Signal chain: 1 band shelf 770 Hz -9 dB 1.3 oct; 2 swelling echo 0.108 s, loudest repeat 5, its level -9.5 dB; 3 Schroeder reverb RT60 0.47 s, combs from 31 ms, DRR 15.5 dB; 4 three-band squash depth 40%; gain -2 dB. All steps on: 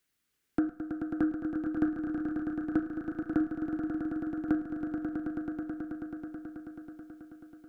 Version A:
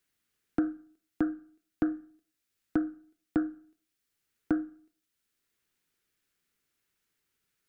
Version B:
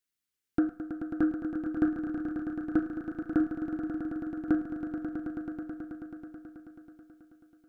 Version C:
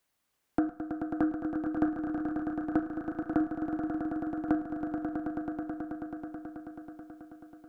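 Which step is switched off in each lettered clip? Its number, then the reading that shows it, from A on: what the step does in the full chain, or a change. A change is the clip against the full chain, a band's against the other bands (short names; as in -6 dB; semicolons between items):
2, momentary loudness spread change -3 LU; 4, loudness change +1.0 LU; 1, 1 kHz band +6.5 dB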